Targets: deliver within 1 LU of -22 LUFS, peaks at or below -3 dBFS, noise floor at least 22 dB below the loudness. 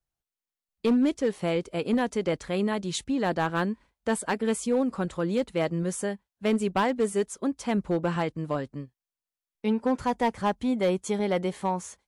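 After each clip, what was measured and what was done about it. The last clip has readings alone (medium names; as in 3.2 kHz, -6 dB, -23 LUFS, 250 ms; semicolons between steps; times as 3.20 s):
clipped samples 1.0%; clipping level -18.0 dBFS; loudness -28.0 LUFS; peak level -18.0 dBFS; loudness target -22.0 LUFS
-> clip repair -18 dBFS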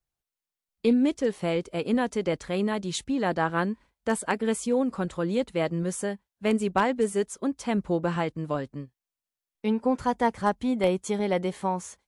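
clipped samples 0.0%; loudness -27.5 LUFS; peak level -9.0 dBFS; loudness target -22.0 LUFS
-> trim +5.5 dB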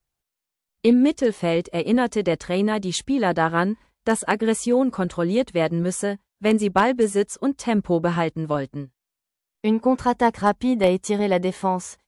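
loudness -22.0 LUFS; peak level -3.5 dBFS; noise floor -85 dBFS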